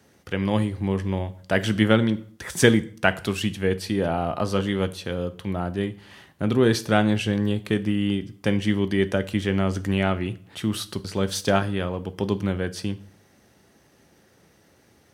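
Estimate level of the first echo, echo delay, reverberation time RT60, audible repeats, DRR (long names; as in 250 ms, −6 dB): no echo audible, no echo audible, 0.45 s, no echo audible, 11.5 dB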